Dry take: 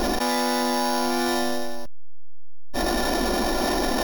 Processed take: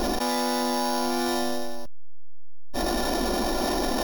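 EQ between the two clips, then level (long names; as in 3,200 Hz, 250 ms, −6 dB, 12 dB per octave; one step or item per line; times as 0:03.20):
parametric band 1,900 Hz −3.5 dB 0.89 octaves
−2.0 dB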